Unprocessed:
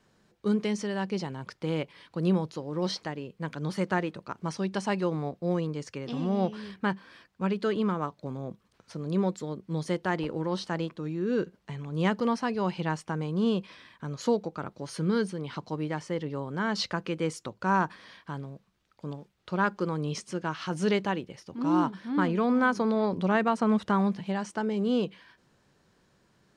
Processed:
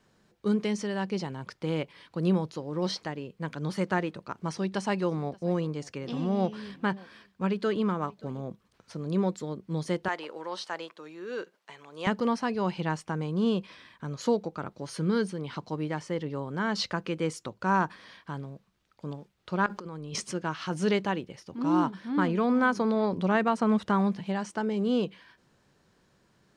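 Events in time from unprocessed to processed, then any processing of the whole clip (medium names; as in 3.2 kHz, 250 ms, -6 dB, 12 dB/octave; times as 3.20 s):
3.99–8.42 s: delay 578 ms -23.5 dB
10.08–12.07 s: high-pass 600 Hz
19.66–20.32 s: compressor with a negative ratio -38 dBFS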